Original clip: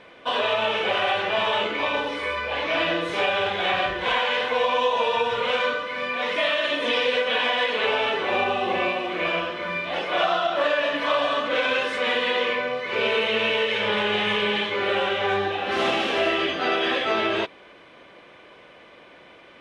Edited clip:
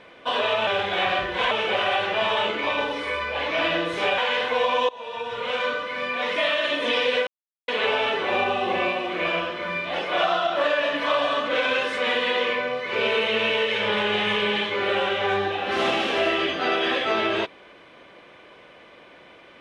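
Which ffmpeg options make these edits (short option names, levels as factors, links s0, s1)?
-filter_complex "[0:a]asplit=7[s0][s1][s2][s3][s4][s5][s6];[s0]atrim=end=0.672[s7];[s1]atrim=start=3.338:end=4.182[s8];[s2]atrim=start=0.668:end=3.342[s9];[s3]atrim=start=4.178:end=4.89,asetpts=PTS-STARTPTS,afade=t=out:st=0.708:d=0.004:c=hsin:silence=0.0794328[s10];[s4]atrim=start=4.89:end=7.27,asetpts=PTS-STARTPTS,afade=t=in:d=0.95:silence=0.0794328,afade=t=out:st=2.376:d=0.004:c=hsin[s11];[s5]atrim=start=7.27:end=7.68,asetpts=PTS-STARTPTS,volume=0[s12];[s6]atrim=start=7.68,asetpts=PTS-STARTPTS,afade=t=in:d=0.004:c=hsin[s13];[s7][s8]acrossfade=d=0.004:c1=hsin:c2=hsin[s14];[s14][s9]acrossfade=d=0.004:c1=hsin:c2=hsin[s15];[s10][s11][s12][s13]concat=n=4:v=0:a=1[s16];[s15][s16]acrossfade=d=0.004:c1=hsin:c2=hsin"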